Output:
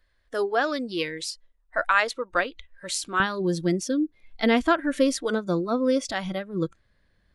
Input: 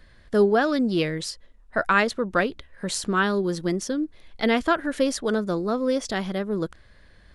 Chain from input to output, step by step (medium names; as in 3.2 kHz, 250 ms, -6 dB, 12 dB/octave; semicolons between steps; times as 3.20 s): spectral noise reduction 14 dB; peaking EQ 170 Hz -12.5 dB 1.8 oct, from 3.20 s +3.5 dB